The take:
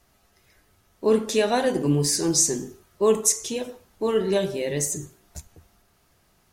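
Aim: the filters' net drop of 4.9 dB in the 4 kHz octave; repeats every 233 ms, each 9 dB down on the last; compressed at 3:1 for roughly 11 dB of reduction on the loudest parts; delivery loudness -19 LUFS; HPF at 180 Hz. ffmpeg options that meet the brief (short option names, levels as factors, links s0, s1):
-af "highpass=180,equalizer=f=4000:t=o:g=-7,acompressor=threshold=0.0282:ratio=3,aecho=1:1:233|466|699|932:0.355|0.124|0.0435|0.0152,volume=4.73"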